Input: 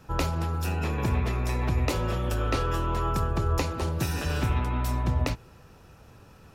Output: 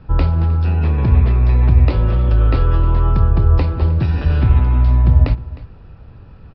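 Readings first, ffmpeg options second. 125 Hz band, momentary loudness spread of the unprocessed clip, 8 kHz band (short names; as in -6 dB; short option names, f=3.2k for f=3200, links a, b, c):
+14.5 dB, 2 LU, under -25 dB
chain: -af "aemphasis=mode=reproduction:type=bsi,aresample=11025,aresample=44100,aecho=1:1:309:0.119,volume=3dB"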